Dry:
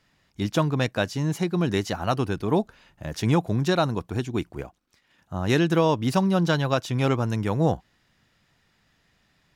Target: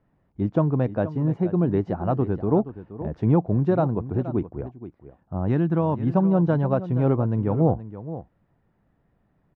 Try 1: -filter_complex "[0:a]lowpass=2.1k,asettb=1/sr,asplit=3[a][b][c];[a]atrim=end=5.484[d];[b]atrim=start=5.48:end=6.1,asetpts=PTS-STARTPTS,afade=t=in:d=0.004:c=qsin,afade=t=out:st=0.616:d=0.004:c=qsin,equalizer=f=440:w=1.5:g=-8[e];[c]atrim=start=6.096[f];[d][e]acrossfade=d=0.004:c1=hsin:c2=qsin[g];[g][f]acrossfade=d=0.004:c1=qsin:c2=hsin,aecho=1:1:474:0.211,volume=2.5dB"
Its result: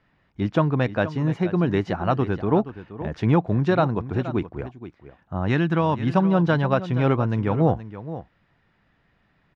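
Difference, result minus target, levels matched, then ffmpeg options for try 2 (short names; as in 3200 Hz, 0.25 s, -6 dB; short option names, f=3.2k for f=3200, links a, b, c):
2000 Hz band +11.5 dB
-filter_complex "[0:a]lowpass=770,asettb=1/sr,asplit=3[a][b][c];[a]atrim=end=5.484[d];[b]atrim=start=5.48:end=6.1,asetpts=PTS-STARTPTS,afade=t=in:d=0.004:c=qsin,afade=t=out:st=0.616:d=0.004:c=qsin,equalizer=f=440:w=1.5:g=-8[e];[c]atrim=start=6.096[f];[d][e]acrossfade=d=0.004:c1=hsin:c2=qsin[g];[g][f]acrossfade=d=0.004:c1=qsin:c2=hsin,aecho=1:1:474:0.211,volume=2.5dB"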